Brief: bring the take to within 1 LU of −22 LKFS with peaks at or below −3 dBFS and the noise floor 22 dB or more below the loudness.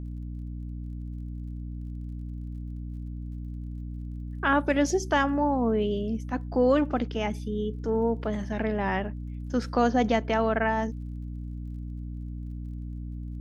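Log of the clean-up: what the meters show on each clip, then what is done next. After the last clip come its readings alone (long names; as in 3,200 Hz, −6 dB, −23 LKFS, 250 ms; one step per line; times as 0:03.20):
crackle rate 33 per second; mains hum 60 Hz; hum harmonics up to 300 Hz; level of the hum −33 dBFS; integrated loudness −29.5 LKFS; sample peak −11.5 dBFS; target loudness −22.0 LKFS
→ click removal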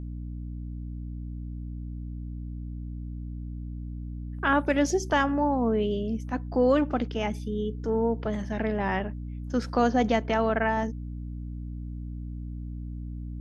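crackle rate 0 per second; mains hum 60 Hz; hum harmonics up to 300 Hz; level of the hum −33 dBFS
→ mains-hum notches 60/120/180/240/300 Hz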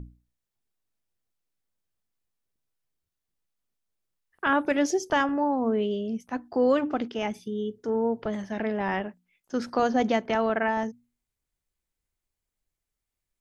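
mains hum none found; integrated loudness −27.0 LKFS; sample peak −12.5 dBFS; target loudness −22.0 LKFS
→ level +5 dB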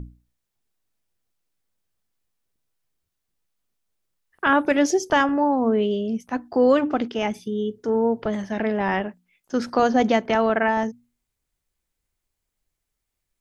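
integrated loudness −22.0 LKFS; sample peak −7.5 dBFS; background noise floor −81 dBFS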